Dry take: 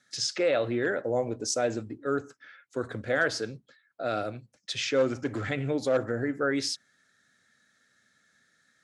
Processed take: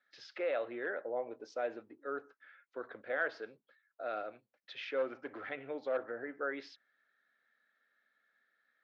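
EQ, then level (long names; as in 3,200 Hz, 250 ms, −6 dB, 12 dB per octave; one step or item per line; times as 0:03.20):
band-pass filter 500–3,300 Hz
high-frequency loss of the air 220 metres
−6.0 dB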